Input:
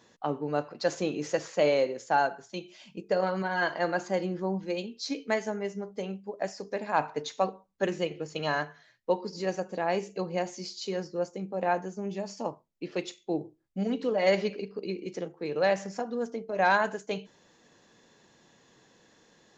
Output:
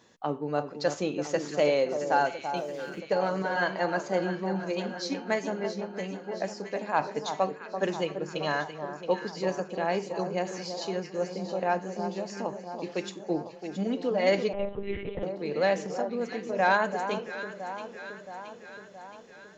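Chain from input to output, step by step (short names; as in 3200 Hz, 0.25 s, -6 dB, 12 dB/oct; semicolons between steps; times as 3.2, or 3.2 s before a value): echo with dull and thin repeats by turns 0.336 s, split 1300 Hz, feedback 77%, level -8 dB; 2.57–3 backlash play -51.5 dBFS; 14.53–15.23 monotone LPC vocoder at 8 kHz 200 Hz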